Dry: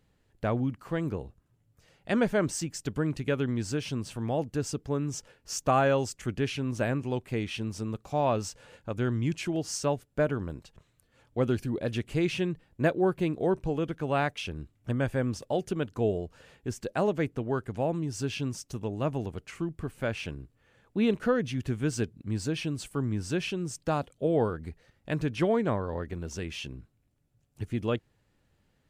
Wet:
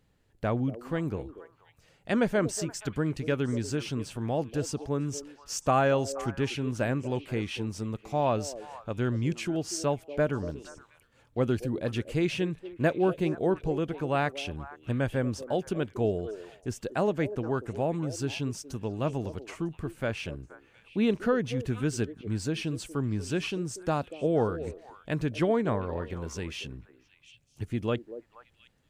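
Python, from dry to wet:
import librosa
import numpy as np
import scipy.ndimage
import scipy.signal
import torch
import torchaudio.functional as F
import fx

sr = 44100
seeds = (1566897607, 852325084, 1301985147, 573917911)

y = fx.echo_stepped(x, sr, ms=238, hz=420.0, octaves=1.4, feedback_pct=70, wet_db=-10)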